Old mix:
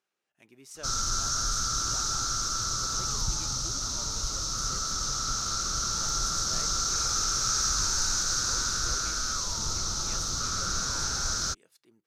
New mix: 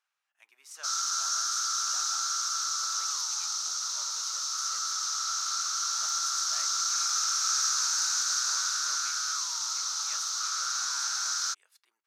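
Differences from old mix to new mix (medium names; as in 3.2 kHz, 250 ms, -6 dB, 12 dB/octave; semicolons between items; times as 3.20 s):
speech: remove high-pass 1.4 kHz 6 dB/octave; master: add high-pass 1 kHz 24 dB/octave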